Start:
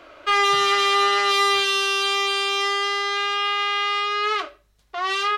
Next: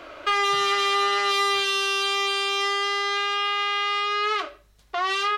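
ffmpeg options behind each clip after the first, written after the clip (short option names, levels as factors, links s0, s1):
-af "acompressor=threshold=0.0316:ratio=2,volume=1.68"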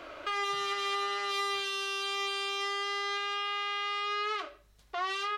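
-af "alimiter=limit=0.106:level=0:latency=1:release=360,volume=0.631"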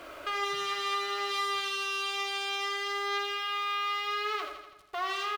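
-af "acrusher=bits=8:mix=0:aa=0.5,aecho=1:1:82|164|246|328|410|492|574:0.355|0.209|0.124|0.0729|0.043|0.0254|0.015"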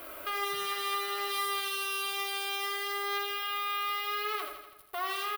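-af "aexciter=amount=9.5:drive=3.9:freq=9500,volume=0.841"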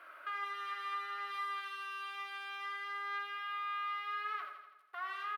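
-af "bandpass=f=1500:t=q:w=2.6:csg=0,volume=0.891"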